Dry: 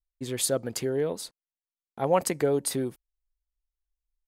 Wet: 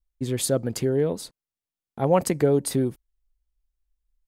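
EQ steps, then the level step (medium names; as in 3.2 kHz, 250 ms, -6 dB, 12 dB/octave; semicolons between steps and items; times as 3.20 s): bass shelf 340 Hz +10.5 dB; 0.0 dB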